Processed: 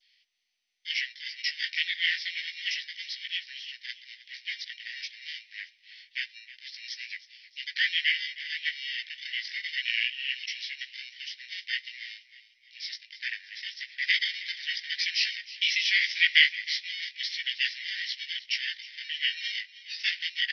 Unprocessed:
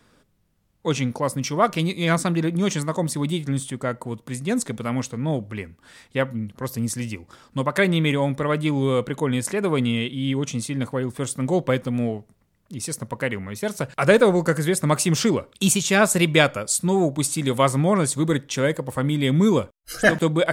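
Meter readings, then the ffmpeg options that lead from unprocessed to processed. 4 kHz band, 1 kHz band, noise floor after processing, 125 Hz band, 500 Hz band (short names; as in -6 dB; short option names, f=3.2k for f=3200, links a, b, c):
+3.5 dB, under -40 dB, -64 dBFS, under -40 dB, under -40 dB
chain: -filter_complex "[0:a]adynamicequalizer=threshold=0.02:dfrequency=2400:dqfactor=1.5:tfrequency=2400:tqfactor=1.5:attack=5:release=100:ratio=0.375:range=1.5:mode=boostabove:tftype=bell,flanger=delay=16:depth=2.8:speed=0.28,asplit=2[a][b];[b]acrusher=samples=30:mix=1:aa=0.000001,volume=-6dB[c];[a][c]amix=inputs=2:normalize=0,afreqshift=-360,asuperpass=centerf=3200:order=20:qfactor=0.89,asplit=5[d][e][f][g][h];[e]adelay=313,afreqshift=33,volume=-17dB[i];[f]adelay=626,afreqshift=66,volume=-23.6dB[j];[g]adelay=939,afreqshift=99,volume=-30.1dB[k];[h]adelay=1252,afreqshift=132,volume=-36.7dB[l];[d][i][j][k][l]amix=inputs=5:normalize=0,volume=4.5dB" -ar 24000 -c:a mp2 -b:a 48k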